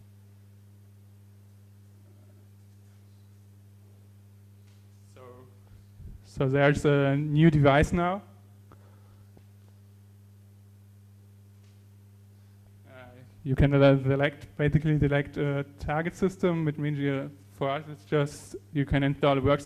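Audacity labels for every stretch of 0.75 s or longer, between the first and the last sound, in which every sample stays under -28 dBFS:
8.160000	13.460000	silence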